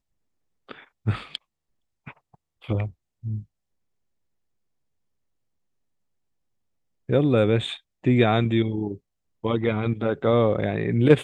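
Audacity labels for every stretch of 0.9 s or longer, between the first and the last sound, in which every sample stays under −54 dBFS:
3.450000	7.090000	silence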